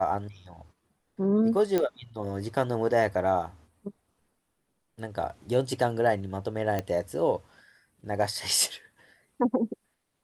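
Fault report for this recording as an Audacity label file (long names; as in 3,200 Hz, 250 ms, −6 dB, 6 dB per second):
1.780000	1.780000	click −13 dBFS
6.790000	6.790000	click −16 dBFS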